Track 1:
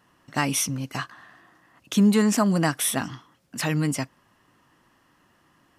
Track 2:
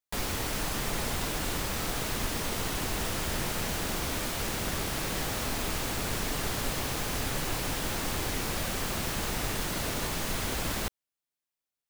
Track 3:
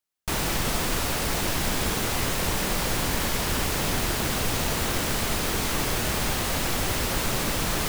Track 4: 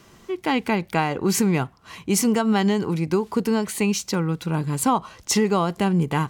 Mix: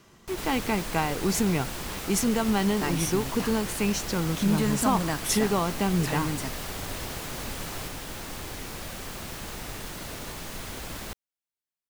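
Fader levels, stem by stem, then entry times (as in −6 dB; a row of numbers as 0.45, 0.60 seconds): −7.0, −5.5, −12.5, −5.0 decibels; 2.45, 0.25, 0.00, 0.00 seconds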